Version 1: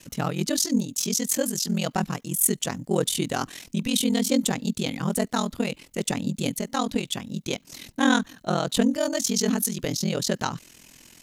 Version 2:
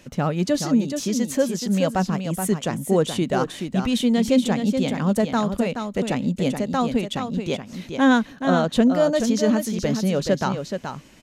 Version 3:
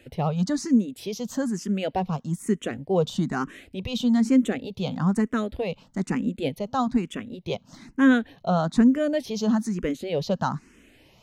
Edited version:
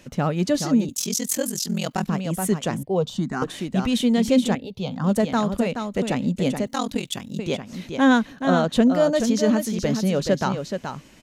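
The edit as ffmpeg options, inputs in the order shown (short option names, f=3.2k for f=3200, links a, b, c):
-filter_complex "[0:a]asplit=2[a][b];[2:a]asplit=2[c][d];[1:a]asplit=5[e][f][g][h][i];[e]atrim=end=0.892[j];[a]atrim=start=0.888:end=2.092[k];[f]atrim=start=2.088:end=2.832[l];[c]atrim=start=2.828:end=3.422[m];[g]atrim=start=3.418:end=4.552[n];[d]atrim=start=4.548:end=5.042[o];[h]atrim=start=5.038:end=6.672[p];[b]atrim=start=6.668:end=7.392[q];[i]atrim=start=7.388[r];[j][k]acrossfade=d=0.004:c1=hsin:c2=hsin[s];[s][l]acrossfade=d=0.004:c1=hsin:c2=hsin[t];[t][m]acrossfade=d=0.004:c1=hsin:c2=hsin[u];[u][n]acrossfade=d=0.004:c1=hsin:c2=hsin[v];[v][o]acrossfade=d=0.004:c1=hsin:c2=hsin[w];[w][p]acrossfade=d=0.004:c1=hsin:c2=hsin[x];[x][q]acrossfade=d=0.004:c1=hsin:c2=hsin[y];[y][r]acrossfade=d=0.004:c1=hsin:c2=hsin"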